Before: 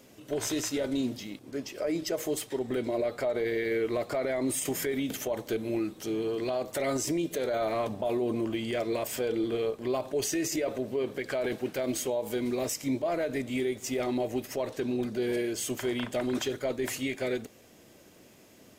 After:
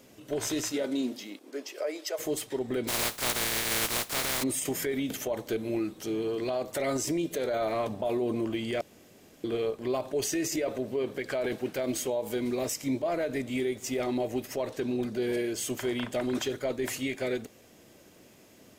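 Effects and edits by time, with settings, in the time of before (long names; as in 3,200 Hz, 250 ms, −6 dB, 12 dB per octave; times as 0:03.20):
0:00.72–0:02.18: high-pass filter 150 Hz → 520 Hz 24 dB per octave
0:02.87–0:04.42: compressing power law on the bin magnitudes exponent 0.19
0:08.81–0:09.44: fill with room tone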